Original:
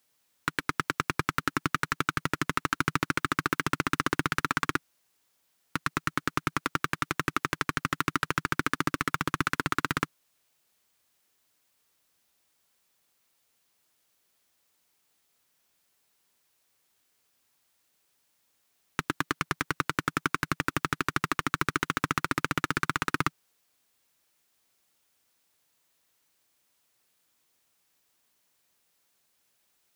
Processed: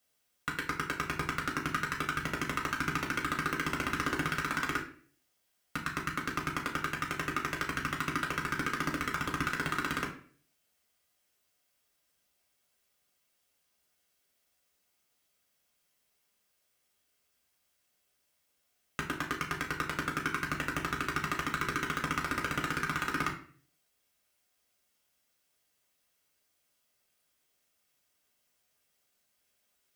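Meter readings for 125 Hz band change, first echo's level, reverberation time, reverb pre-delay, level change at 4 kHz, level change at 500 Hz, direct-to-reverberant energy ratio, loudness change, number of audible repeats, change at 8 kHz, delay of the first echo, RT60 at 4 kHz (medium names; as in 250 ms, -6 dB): -4.5 dB, no echo, 0.50 s, 5 ms, -4.0 dB, -3.0 dB, -0.5 dB, -3.5 dB, no echo, -4.0 dB, no echo, 0.35 s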